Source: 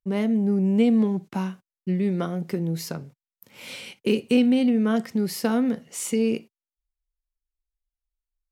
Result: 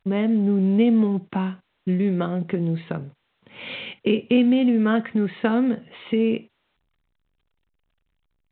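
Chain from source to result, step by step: 4.79–5.49 dynamic EQ 1700 Hz, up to +5 dB, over -42 dBFS, Q 0.91; in parallel at -0.5 dB: compressor 16:1, threshold -30 dBFS, peak gain reduction 16 dB; on the sum: A-law 64 kbps 8000 Hz

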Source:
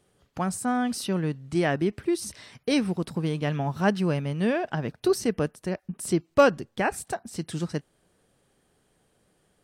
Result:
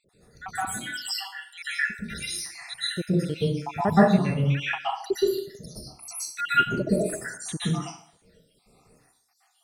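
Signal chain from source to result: random spectral dropouts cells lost 81%; de-esser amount 85%; notch 1600 Hz, Q 7.3; in parallel at +2 dB: compressor, threshold -37 dBFS, peak gain reduction 18.5 dB; on the sum: plate-style reverb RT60 0.54 s, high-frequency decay 0.8×, pre-delay 0.11 s, DRR -9.5 dB; gain -3.5 dB

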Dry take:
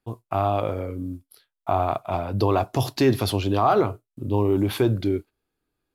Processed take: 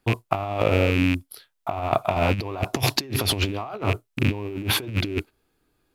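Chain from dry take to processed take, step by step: rattling part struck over -33 dBFS, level -24 dBFS; in parallel at -1.5 dB: limiter -16.5 dBFS, peak gain reduction 8 dB; on the sum: negative-ratio compressor -23 dBFS, ratio -0.5

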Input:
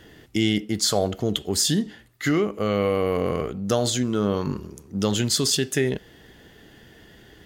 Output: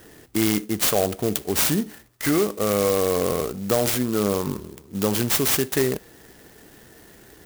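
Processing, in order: tone controls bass -5 dB, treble 0 dB; in parallel at -9 dB: wavefolder -16.5 dBFS; on the sum: clock jitter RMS 0.086 ms

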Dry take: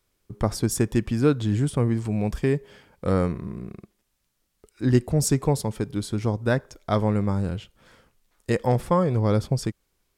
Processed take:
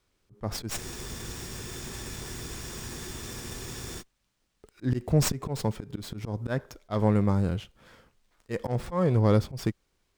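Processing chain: auto swell 0.148 s; spectral freeze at 0.8, 3.21 s; running maximum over 3 samples

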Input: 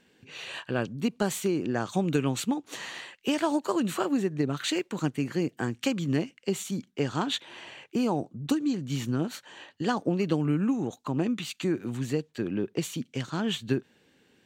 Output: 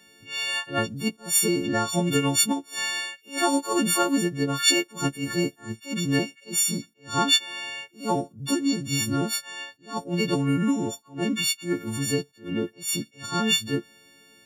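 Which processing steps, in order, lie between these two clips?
frequency quantiser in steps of 4 st; attack slew limiter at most 200 dB/s; gain +3 dB

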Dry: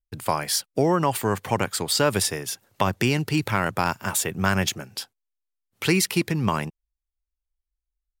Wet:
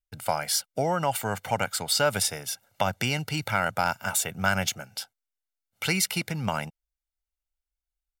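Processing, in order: low shelf 260 Hz -7 dB; comb 1.4 ms, depth 63%; gain -3 dB

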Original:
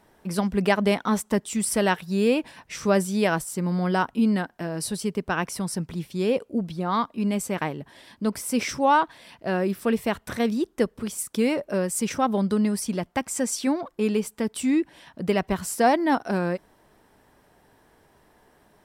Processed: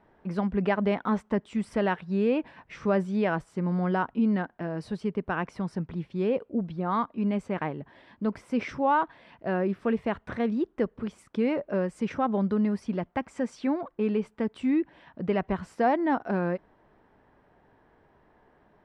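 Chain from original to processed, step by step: LPF 2100 Hz 12 dB/oct; in parallel at -2.5 dB: limiter -17.5 dBFS, peak gain reduction 8.5 dB; on the sum: gain -7 dB

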